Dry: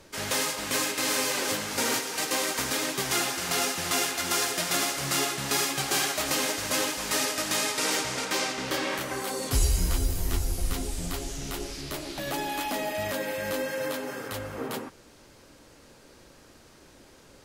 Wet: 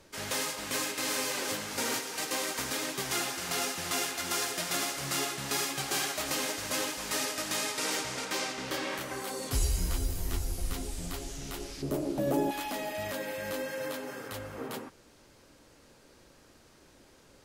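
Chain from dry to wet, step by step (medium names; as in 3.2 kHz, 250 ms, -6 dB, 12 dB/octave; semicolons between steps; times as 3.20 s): 11.82–12.51 s: graphic EQ 125/250/500/2000/4000 Hz +8/+10/+11/-6/-8 dB; trim -5 dB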